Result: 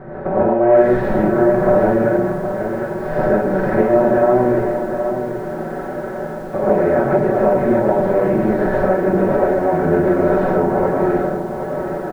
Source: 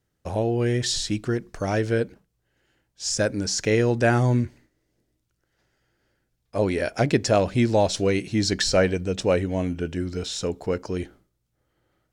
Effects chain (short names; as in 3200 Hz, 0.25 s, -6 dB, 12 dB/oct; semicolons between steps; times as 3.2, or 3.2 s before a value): per-bin compression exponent 0.4; LPF 1400 Hz 24 dB/oct; notches 60/120/180/240/300/360/420/480/540 Hz; comb 5.3 ms, depth 85%; compressor 16:1, threshold -19 dBFS, peak gain reduction 11 dB; non-linear reverb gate 0.17 s rising, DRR -7.5 dB; lo-fi delay 0.77 s, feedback 35%, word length 7-bit, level -8.5 dB